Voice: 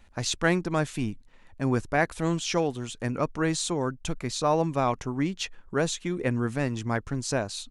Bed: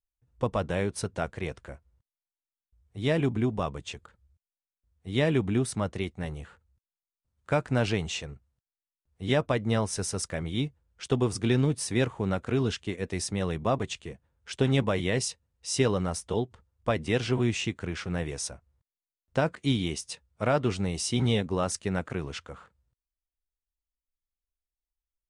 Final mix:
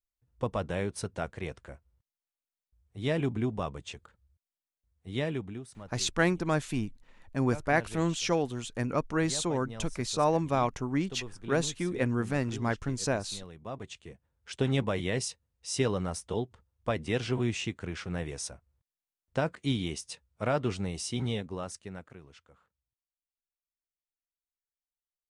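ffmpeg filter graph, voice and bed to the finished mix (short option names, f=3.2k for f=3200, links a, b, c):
-filter_complex "[0:a]adelay=5750,volume=-2dB[a];[1:a]volume=10dB,afade=t=out:st=4.98:d=0.64:silence=0.211349,afade=t=in:st=13.58:d=0.89:silence=0.211349,afade=t=out:st=20.7:d=1.5:silence=0.188365[b];[a][b]amix=inputs=2:normalize=0"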